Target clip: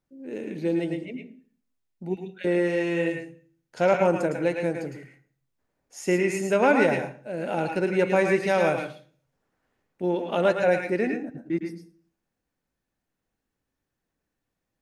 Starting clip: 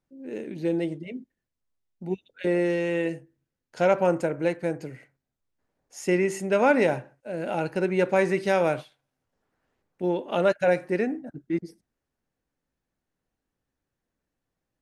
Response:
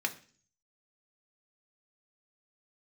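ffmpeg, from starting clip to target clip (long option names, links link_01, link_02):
-filter_complex "[0:a]asplit=2[link_01][link_02];[1:a]atrim=start_sample=2205,highshelf=frequency=8400:gain=7,adelay=108[link_03];[link_02][link_03]afir=irnorm=-1:irlink=0,volume=-9dB[link_04];[link_01][link_04]amix=inputs=2:normalize=0"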